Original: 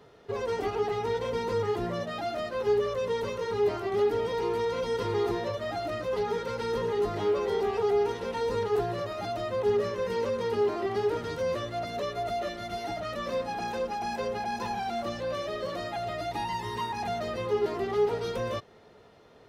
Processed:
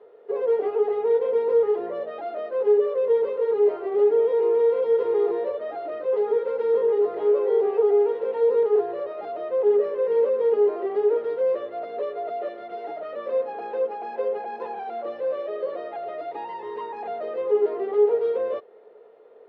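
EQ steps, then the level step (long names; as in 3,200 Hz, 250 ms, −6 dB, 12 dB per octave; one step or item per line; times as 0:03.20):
high-pass with resonance 460 Hz, resonance Q 4.9
high-frequency loss of the air 480 metres
−2.0 dB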